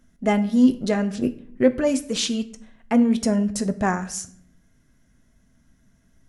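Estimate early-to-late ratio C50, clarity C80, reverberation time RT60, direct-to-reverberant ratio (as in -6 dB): 16.0 dB, 18.5 dB, 0.60 s, 8.5 dB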